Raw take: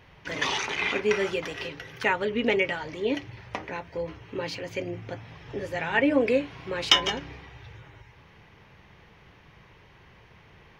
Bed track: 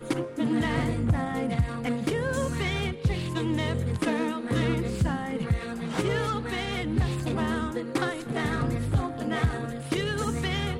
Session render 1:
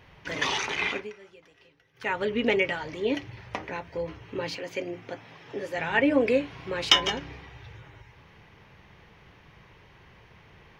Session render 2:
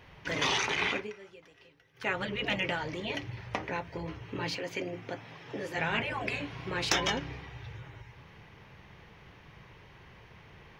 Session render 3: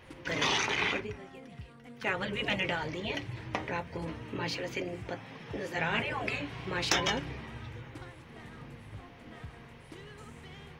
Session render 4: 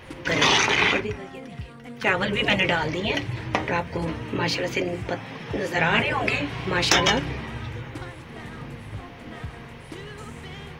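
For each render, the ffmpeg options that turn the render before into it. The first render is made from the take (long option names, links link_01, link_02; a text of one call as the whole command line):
ffmpeg -i in.wav -filter_complex "[0:a]asettb=1/sr,asplit=3[link_01][link_02][link_03];[link_01]atrim=end=4.554[link_04];[link_02]atrim=start=4.55:end=5.78,asetpts=PTS-STARTPTS,afade=type=in:duration=0.004:curve=qsin,afade=type=out:start_time=1.226:duration=0.004:curve=qsin,highpass=210[link_05];[link_03]atrim=start=5.776[link_06];[link_04][link_05]acrossfade=duration=0.004:curve1=hsin:curve2=qsin[link_07];[link_07][link_06]acrossfade=duration=0.004:curve1=qsin:curve2=hsin,asplit=3[link_08][link_09][link_10];[link_08]atrim=end=1.12,asetpts=PTS-STARTPTS,afade=type=out:start_time=0.84:duration=0.28:silence=0.0668344[link_11];[link_09]atrim=start=1.12:end=1.94,asetpts=PTS-STARTPTS,volume=-23.5dB[link_12];[link_10]atrim=start=1.94,asetpts=PTS-STARTPTS,afade=type=in:duration=0.28:silence=0.0668344[link_13];[link_11][link_12][link_13]concat=n=3:v=0:a=1" out.wav
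ffmpeg -i in.wav -af "afftfilt=real='re*lt(hypot(re,im),0.224)':imag='im*lt(hypot(re,im),0.224)':win_size=1024:overlap=0.75,adynamicequalizer=threshold=0.00141:dfrequency=130:dqfactor=2.2:tfrequency=130:tqfactor=2.2:attack=5:release=100:ratio=0.375:range=2:mode=boostabove:tftype=bell" out.wav
ffmpeg -i in.wav -i bed.wav -filter_complex "[1:a]volume=-21.5dB[link_01];[0:a][link_01]amix=inputs=2:normalize=0" out.wav
ffmpeg -i in.wav -af "volume=10dB,alimiter=limit=-1dB:level=0:latency=1" out.wav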